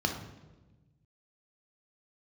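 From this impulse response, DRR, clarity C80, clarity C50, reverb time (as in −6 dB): 3.0 dB, 9.5 dB, 6.5 dB, 1.2 s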